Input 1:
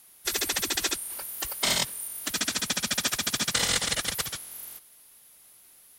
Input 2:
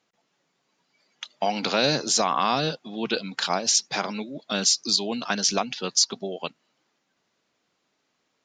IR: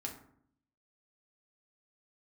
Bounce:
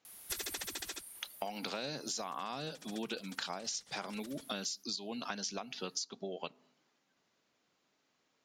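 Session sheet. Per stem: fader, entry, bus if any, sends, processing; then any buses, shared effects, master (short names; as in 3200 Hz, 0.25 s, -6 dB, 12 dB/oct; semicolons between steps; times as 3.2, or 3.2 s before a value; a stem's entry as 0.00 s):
+1.5 dB, 0.05 s, no send, compressor 4:1, threshold -30 dBFS, peak gain reduction 8.5 dB; auto duck -18 dB, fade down 0.65 s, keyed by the second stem
-4.5 dB, 0.00 s, send -18.5 dB, dry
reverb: on, RT60 0.65 s, pre-delay 4 ms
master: compressor 12:1, threshold -36 dBFS, peak gain reduction 16.5 dB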